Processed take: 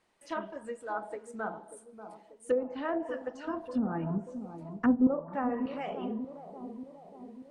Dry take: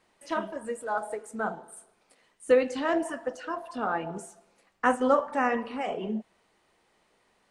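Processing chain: 3.45–5.07 resonant low shelf 350 Hz +11.5 dB, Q 1.5; treble ducked by the level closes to 520 Hz, closed at -19 dBFS; analogue delay 0.588 s, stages 4096, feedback 57%, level -10.5 dB; gain -5.5 dB

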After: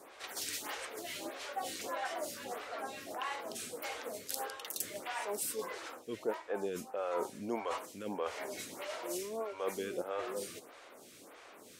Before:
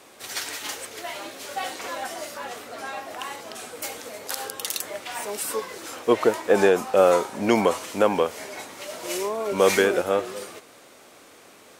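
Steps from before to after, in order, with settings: reverse; compressor 6:1, threshold -30 dBFS, peak gain reduction 16.5 dB; reverse; photocell phaser 1.6 Hz; gain -2 dB

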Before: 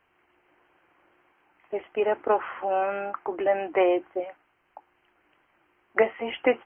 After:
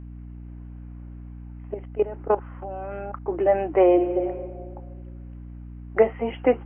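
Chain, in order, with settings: tilt shelf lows +3.5 dB, about 730 Hz; harmonic-percussive split harmonic +4 dB; high shelf 2700 Hz -9 dB; 1.74–3.28 level quantiser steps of 17 dB; 3.88–4.28 reverb throw, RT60 1.7 s, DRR 4 dB; hum 60 Hz, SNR 13 dB

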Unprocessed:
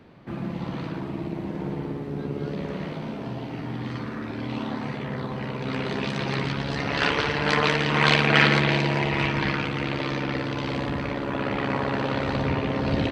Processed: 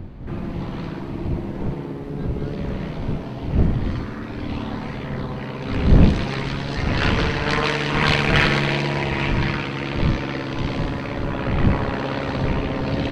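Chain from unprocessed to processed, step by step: wind noise 160 Hz -24 dBFS; in parallel at -7 dB: soft clip -15.5 dBFS, distortion -8 dB; on the sum: wow and flutter 18 cents; on a send: thin delay 70 ms, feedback 80%, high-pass 5400 Hz, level -7 dB; on the sum: gain -2 dB

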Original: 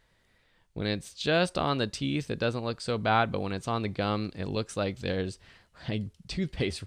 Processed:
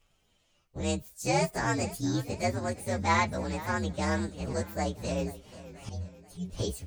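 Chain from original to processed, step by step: inharmonic rescaling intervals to 123%; 5.89–6.5 metallic resonator 90 Hz, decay 0.37 s, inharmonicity 0.008; warbling echo 0.485 s, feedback 47%, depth 123 cents, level -16 dB; gain +1.5 dB

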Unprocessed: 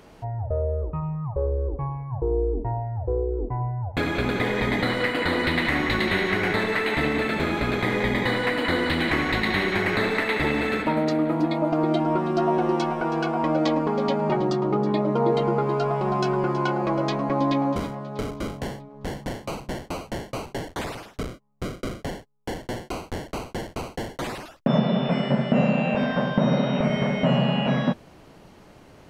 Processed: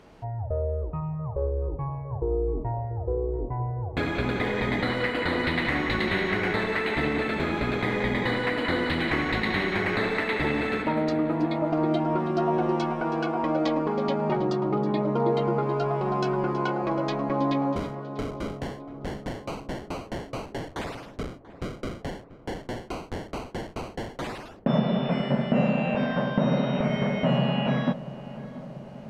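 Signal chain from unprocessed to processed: high shelf 8500 Hz -11 dB; on a send: darkening echo 0.687 s, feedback 73%, low-pass 1600 Hz, level -16 dB; on the sum: gain -2.5 dB

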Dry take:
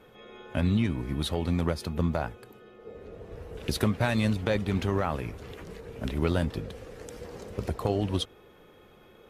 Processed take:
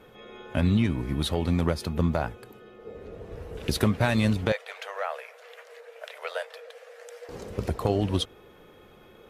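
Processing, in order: 4.52–7.29 rippled Chebyshev high-pass 460 Hz, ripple 6 dB; gain +2.5 dB

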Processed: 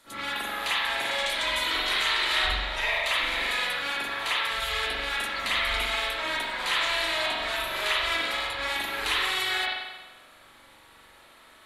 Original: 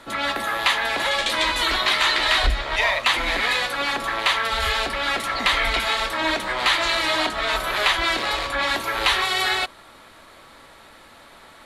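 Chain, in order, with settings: pre-emphasis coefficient 0.8; spring tank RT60 1.1 s, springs 43 ms, chirp 55 ms, DRR -9.5 dB; gain -5 dB

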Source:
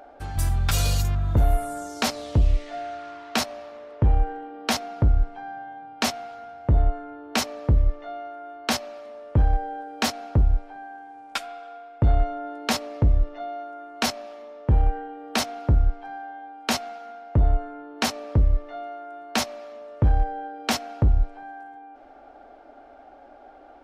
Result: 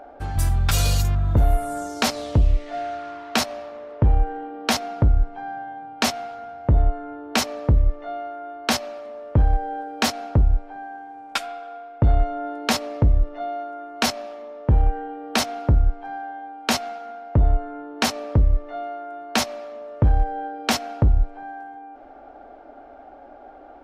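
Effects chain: in parallel at -2.5 dB: compressor, threshold -25 dBFS, peak gain reduction 11 dB; on the sum: mismatched tape noise reduction decoder only

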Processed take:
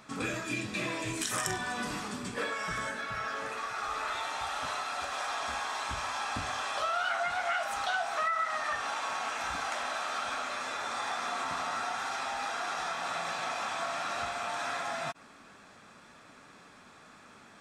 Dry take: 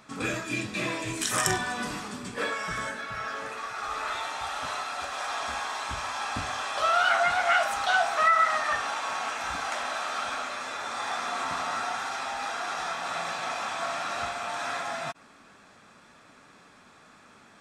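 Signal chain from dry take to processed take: compressor 2.5:1, threshold -32 dBFS, peak gain reduction 10 dB

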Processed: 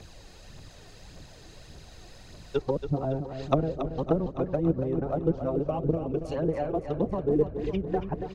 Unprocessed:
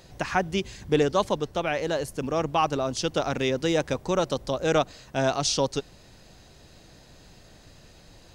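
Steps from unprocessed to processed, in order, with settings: whole clip reversed; spectral gain 5.52–6.36, 750–2200 Hz -10 dB; treble ducked by the level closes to 360 Hz, closed at -22 dBFS; phaser 1.7 Hz, delay 2.9 ms, feedback 52%; feedback echo 0.28 s, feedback 59%, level -9 dB

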